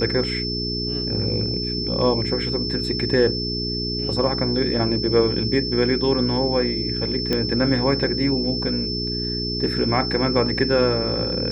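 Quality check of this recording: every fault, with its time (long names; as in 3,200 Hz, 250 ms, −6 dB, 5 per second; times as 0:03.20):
mains hum 60 Hz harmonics 7 −28 dBFS
whistle 5,300 Hz −26 dBFS
0:07.33: click −9 dBFS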